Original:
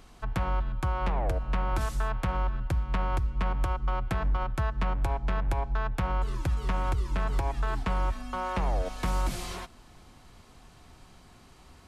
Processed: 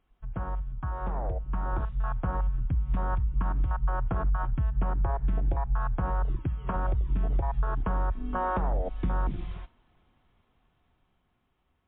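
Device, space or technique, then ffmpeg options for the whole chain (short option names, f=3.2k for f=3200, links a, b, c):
low-bitrate web radio: -filter_complex "[0:a]bandreject=f=309.1:t=h:w=4,bandreject=f=618.2:t=h:w=4,bandreject=f=927.3:t=h:w=4,bandreject=f=1.2364k:t=h:w=4,bandreject=f=1.5455k:t=h:w=4,bandreject=f=1.8546k:t=h:w=4,bandreject=f=2.1637k:t=h:w=4,asettb=1/sr,asplit=3[a][b][c];[a]atrim=end=6.364[d];[b]atrim=start=6.36:end=6.76,asetpts=PTS-STARTPTS,afade=t=in:d=0.004:c=qsin,afade=t=out:st=0.396:d=0.004:c=qsin,highpass=f=170:p=1[e];[c]atrim=start=6.756[f];[d][e]acrossfade=d=0.004:c1=hsin:c2=qsin[g];[g][f]acrossfade=d=0.004:c1=qsin:c2=hsin,afwtdn=0.0355,dynaudnorm=f=750:g=7:m=11dB,alimiter=limit=-16dB:level=0:latency=1:release=170,volume=-3.5dB" -ar 8000 -c:a libmp3lame -b:a 24k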